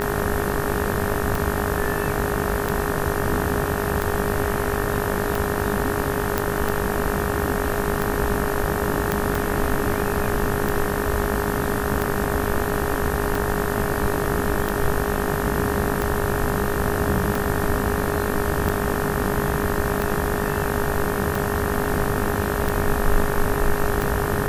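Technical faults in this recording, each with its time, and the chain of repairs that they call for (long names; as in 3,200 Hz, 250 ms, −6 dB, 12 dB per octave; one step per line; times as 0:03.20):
mains buzz 50 Hz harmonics 37 −27 dBFS
scratch tick 45 rpm
whistle 410 Hz −27 dBFS
0:06.38: click
0:09.12: click −6 dBFS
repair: click removal
hum removal 50 Hz, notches 37
notch filter 410 Hz, Q 30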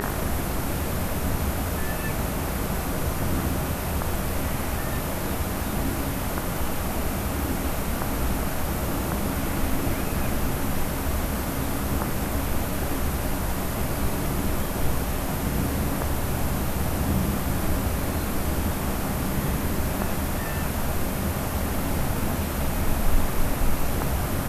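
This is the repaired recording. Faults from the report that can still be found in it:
none of them is left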